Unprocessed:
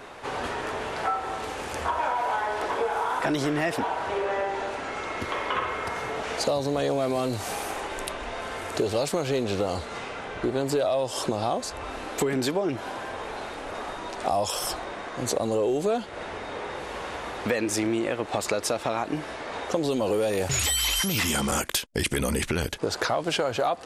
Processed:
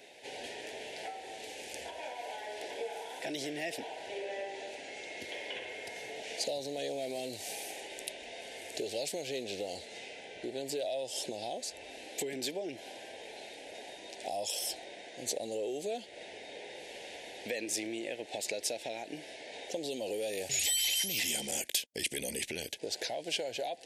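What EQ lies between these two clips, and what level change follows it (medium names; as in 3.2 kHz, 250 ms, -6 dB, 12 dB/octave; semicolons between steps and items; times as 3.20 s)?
high-pass 840 Hz 6 dB/octave; Butterworth band-stop 1.2 kHz, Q 0.86; -4.5 dB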